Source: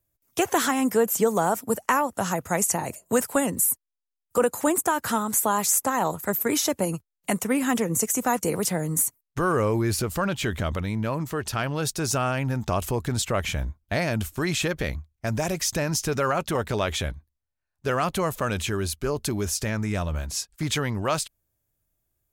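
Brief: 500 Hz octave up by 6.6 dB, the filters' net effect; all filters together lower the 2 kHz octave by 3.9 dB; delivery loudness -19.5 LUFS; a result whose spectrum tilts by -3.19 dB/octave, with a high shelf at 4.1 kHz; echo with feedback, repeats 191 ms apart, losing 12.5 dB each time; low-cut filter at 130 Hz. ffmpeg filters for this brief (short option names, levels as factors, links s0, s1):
-af "highpass=130,equalizer=f=500:t=o:g=8,equalizer=f=2000:t=o:g=-7.5,highshelf=f=4100:g=7.5,aecho=1:1:191|382|573:0.237|0.0569|0.0137,volume=1.19"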